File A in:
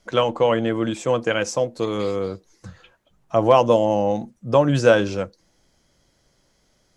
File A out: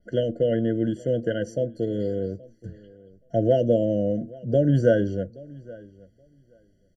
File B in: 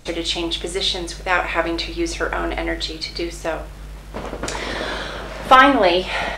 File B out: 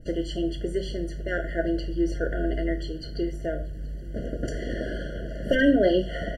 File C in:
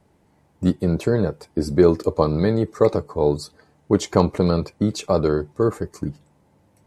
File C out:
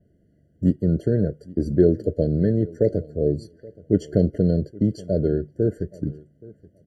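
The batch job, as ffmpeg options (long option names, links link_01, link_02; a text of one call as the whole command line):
ffmpeg -i in.wav -filter_complex "[0:a]adynamicequalizer=threshold=0.00562:dfrequency=7000:dqfactor=1.2:tfrequency=7000:tqfactor=1.2:attack=5:release=100:ratio=0.375:range=2.5:mode=cutabove:tftype=bell,asuperstop=centerf=3600:order=8:qfactor=6.7,tiltshelf=frequency=640:gain=7,asplit=2[link_01][link_02];[link_02]adelay=824,lowpass=frequency=3900:poles=1,volume=-22dB,asplit=2[link_03][link_04];[link_04]adelay=824,lowpass=frequency=3900:poles=1,volume=0.15[link_05];[link_03][link_05]amix=inputs=2:normalize=0[link_06];[link_01][link_06]amix=inputs=2:normalize=0,afftfilt=real='re*eq(mod(floor(b*sr/1024/690),2),0)':imag='im*eq(mod(floor(b*sr/1024/690),2),0)':win_size=1024:overlap=0.75,volume=-5.5dB" out.wav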